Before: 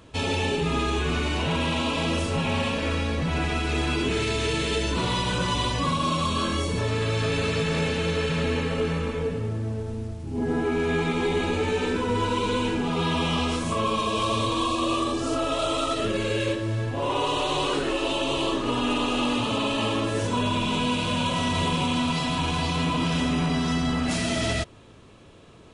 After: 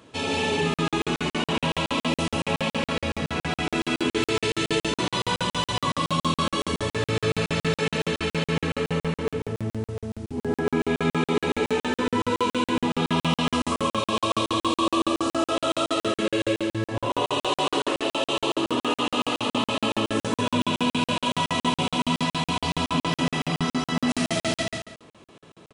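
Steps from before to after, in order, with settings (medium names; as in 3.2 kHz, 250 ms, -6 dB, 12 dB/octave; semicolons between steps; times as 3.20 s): high-pass 150 Hz 12 dB/octave; multi-tap echo 95/145/146/182/320 ms -17/-9/-9.5/-6/-18 dB; on a send at -11 dB: reverberation RT60 0.60 s, pre-delay 25 ms; on the sum: crackling interface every 0.14 s, samples 2048, zero, from 0.74 s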